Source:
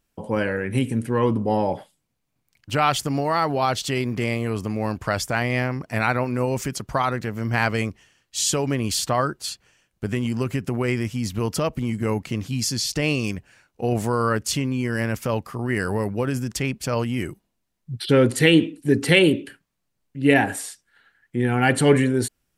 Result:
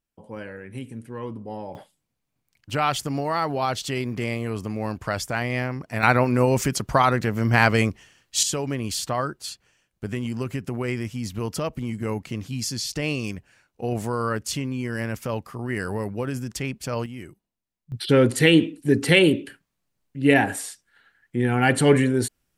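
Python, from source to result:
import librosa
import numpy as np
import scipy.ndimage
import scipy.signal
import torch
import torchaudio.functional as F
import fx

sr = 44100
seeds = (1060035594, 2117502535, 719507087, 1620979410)

y = fx.gain(x, sr, db=fx.steps((0.0, -13.0), (1.75, -3.0), (6.03, 4.0), (8.43, -4.0), (17.06, -11.5), (17.92, -0.5)))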